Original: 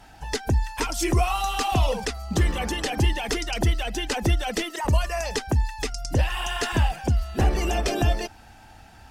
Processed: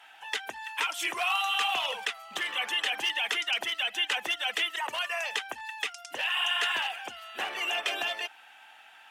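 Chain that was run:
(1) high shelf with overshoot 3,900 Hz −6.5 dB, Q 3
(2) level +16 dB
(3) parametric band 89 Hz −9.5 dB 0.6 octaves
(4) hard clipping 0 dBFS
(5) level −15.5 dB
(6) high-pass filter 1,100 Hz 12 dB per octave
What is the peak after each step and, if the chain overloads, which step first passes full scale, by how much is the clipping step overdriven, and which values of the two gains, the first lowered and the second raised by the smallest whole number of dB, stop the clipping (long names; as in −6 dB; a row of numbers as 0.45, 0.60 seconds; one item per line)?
−9.5, +6.5, +5.5, 0.0, −15.5, −14.0 dBFS
step 2, 5.5 dB
step 2 +10 dB, step 5 −9.5 dB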